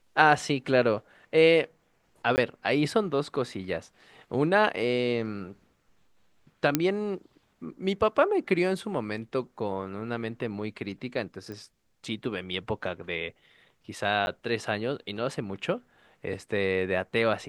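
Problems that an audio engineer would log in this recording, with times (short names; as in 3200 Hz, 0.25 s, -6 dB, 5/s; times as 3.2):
2.36–2.38 gap 19 ms
6.75 pop -7 dBFS
11.52 pop -28 dBFS
14.26–14.27 gap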